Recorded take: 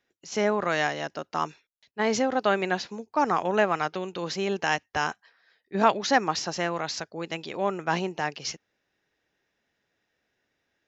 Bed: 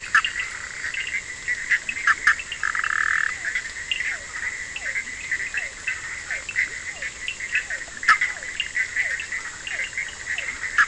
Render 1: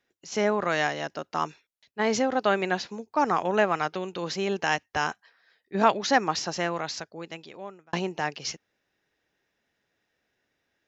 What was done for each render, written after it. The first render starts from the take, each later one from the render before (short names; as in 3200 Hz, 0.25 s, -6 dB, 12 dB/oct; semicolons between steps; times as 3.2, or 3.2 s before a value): 6.7–7.93 fade out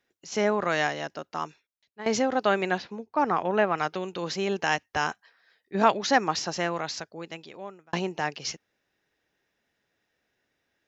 0.82–2.06 fade out, to -13.5 dB; 2.78–3.78 air absorption 170 m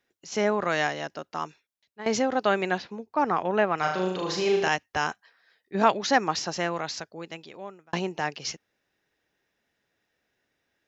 3.79–4.68 flutter echo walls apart 6.5 m, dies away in 0.7 s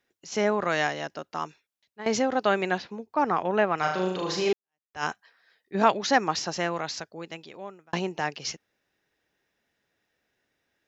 4.53–5.04 fade in exponential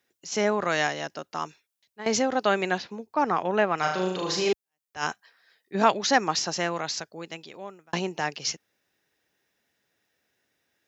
HPF 65 Hz; high shelf 5200 Hz +8 dB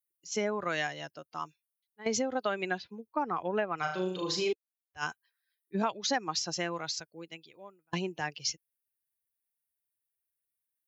per-bin expansion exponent 1.5; compressor 5:1, threshold -27 dBFS, peak gain reduction 11.5 dB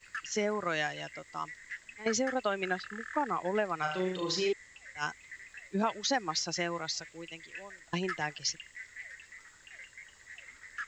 add bed -22 dB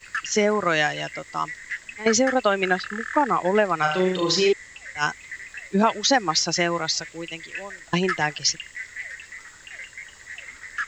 gain +11 dB